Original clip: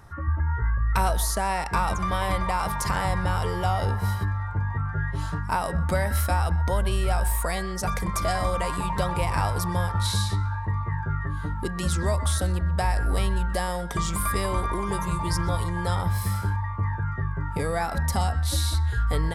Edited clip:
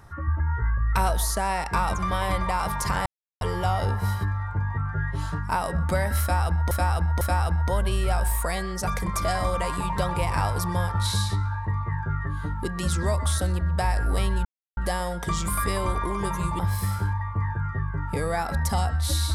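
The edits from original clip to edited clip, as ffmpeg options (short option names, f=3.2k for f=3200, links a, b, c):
-filter_complex "[0:a]asplit=7[a][b][c][d][e][f][g];[a]atrim=end=3.06,asetpts=PTS-STARTPTS,afade=t=out:st=3.056:d=0.004:c=hsin[h];[b]atrim=start=3.06:end=3.41,asetpts=PTS-STARTPTS,volume=0[i];[c]atrim=start=3.41:end=6.712,asetpts=PTS-STARTPTS,afade=t=in:d=0.004:c=hsin[j];[d]atrim=start=6.208:end=6.712[k];[e]atrim=start=6.208:end=13.45,asetpts=PTS-STARTPTS,afade=t=out:st=7.238:d=0.004:c=hsin,apad=pad_dur=0.32[l];[f]atrim=start=13.45:end=15.272,asetpts=PTS-STARTPTS,afade=t=in:d=0.004:c=hsin[m];[g]atrim=start=16.018[n];[h][i][j]concat=n=3:v=0:a=1[o];[o][k]acrossfade=d=0.004:c1=hsin:c2=hsin[p];[l][m]concat=n=2:v=0:a=1[q];[p][q]acrossfade=d=0.004:c1=hsin:c2=hsin[r];[r][n]acrossfade=d=0.004:c1=hsin:c2=hsin"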